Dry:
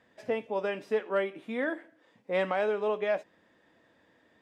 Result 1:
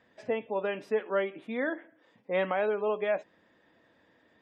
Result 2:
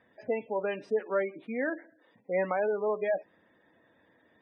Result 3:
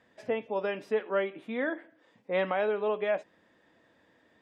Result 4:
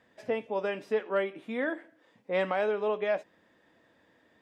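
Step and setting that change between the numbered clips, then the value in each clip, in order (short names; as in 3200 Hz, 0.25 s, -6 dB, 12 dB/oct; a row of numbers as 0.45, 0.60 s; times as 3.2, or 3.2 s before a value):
spectral gate, under each frame's peak: -35, -20, -45, -60 dB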